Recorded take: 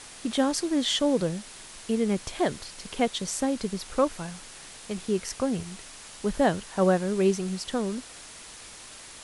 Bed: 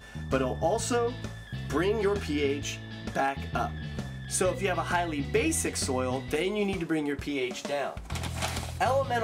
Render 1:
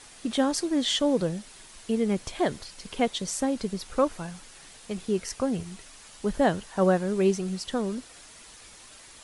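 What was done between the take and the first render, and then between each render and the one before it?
denoiser 6 dB, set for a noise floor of -46 dBFS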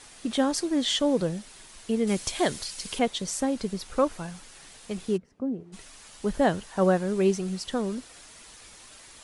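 2.07–2.99 high shelf 2900 Hz +11 dB; 5.16–5.72 band-pass 160 Hz -> 430 Hz, Q 1.8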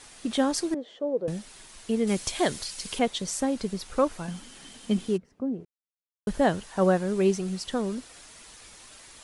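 0.74–1.28 band-pass 480 Hz, Q 2.6; 4.28–5.08 small resonant body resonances 240/3100 Hz, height 15 dB; 5.65–6.27 mute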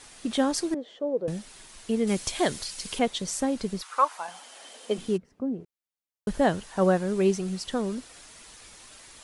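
3.81–4.97 resonant high-pass 1200 Hz -> 450 Hz, resonance Q 3.1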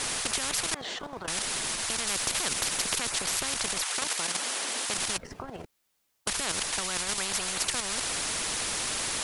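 level quantiser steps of 9 dB; spectral compressor 10:1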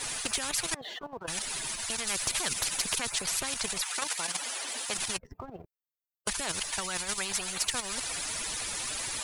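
per-bin expansion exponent 2; sample leveller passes 1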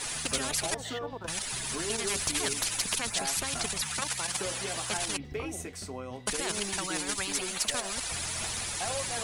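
add bed -10.5 dB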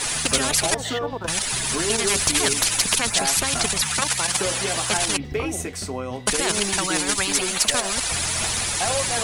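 gain +10 dB

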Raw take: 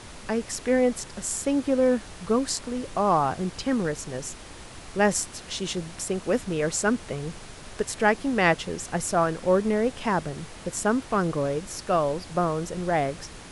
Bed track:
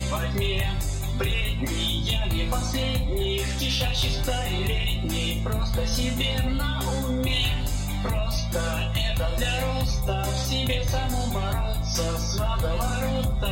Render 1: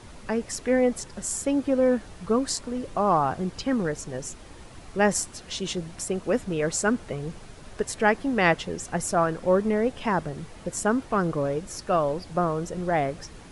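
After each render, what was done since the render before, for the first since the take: denoiser 7 dB, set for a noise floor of -43 dBFS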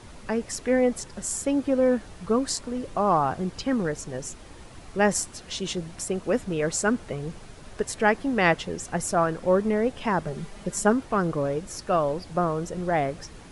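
10.26–10.93 comb 5 ms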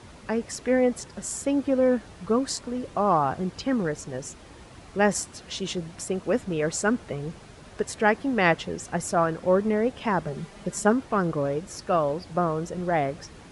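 HPF 50 Hz; high shelf 9500 Hz -7 dB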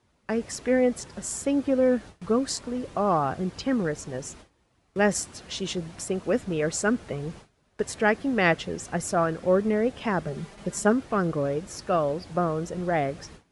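gate with hold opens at -34 dBFS; dynamic EQ 940 Hz, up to -6 dB, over -41 dBFS, Q 3.7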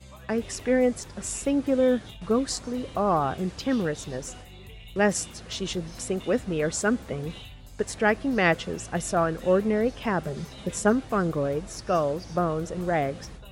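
add bed track -20 dB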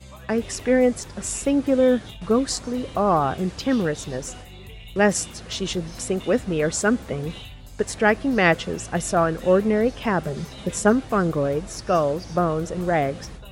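gain +4 dB

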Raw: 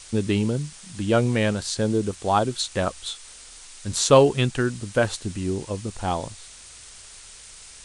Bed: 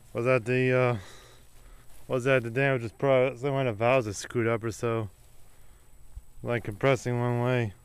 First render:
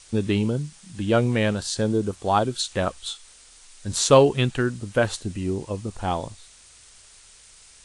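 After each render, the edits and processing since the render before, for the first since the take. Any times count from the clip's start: noise print and reduce 6 dB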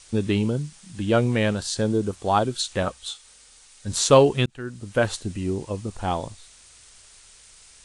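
2.83–3.88 notch comb 340 Hz; 4.46–5.02 fade in linear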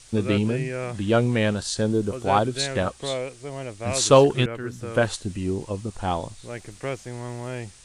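add bed -6.5 dB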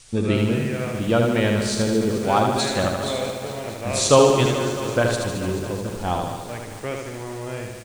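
feedback echo 77 ms, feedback 56%, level -4 dB; lo-fi delay 0.217 s, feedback 80%, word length 6-bit, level -11 dB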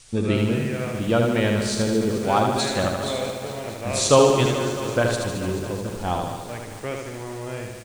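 gain -1 dB

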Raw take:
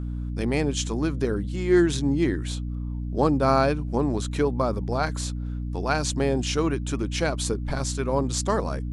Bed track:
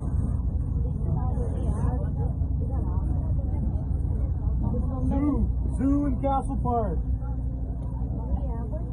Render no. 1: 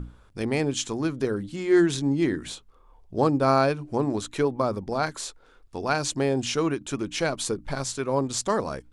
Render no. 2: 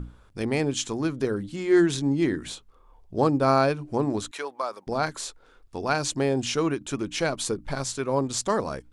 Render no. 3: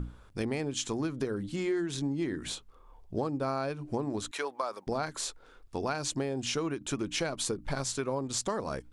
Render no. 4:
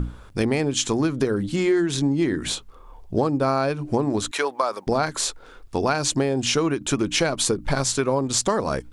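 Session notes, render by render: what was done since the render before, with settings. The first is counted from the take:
notches 60/120/180/240/300 Hz
4.31–4.87 HPF 800 Hz
compressor 12:1, threshold -28 dBFS, peak gain reduction 13.5 dB
gain +10.5 dB

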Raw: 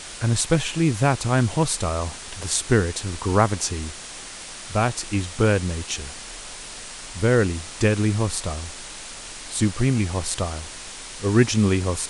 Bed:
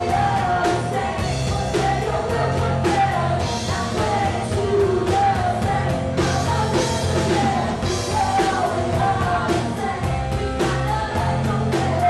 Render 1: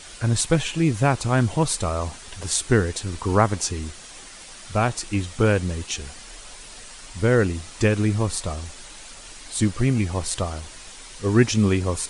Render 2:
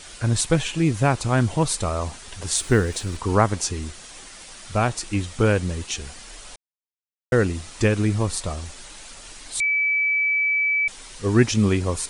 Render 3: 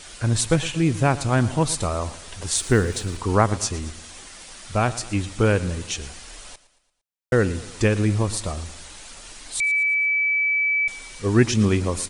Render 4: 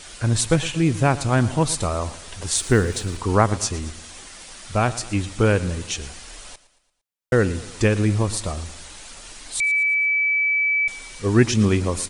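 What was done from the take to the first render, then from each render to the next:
denoiser 7 dB, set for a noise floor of -38 dBFS
2.56–3.17 G.711 law mismatch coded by mu; 6.56–7.32 mute; 9.6–10.88 bleep 2300 Hz -18 dBFS
feedback echo 0.114 s, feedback 49%, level -17 dB
gain +1 dB

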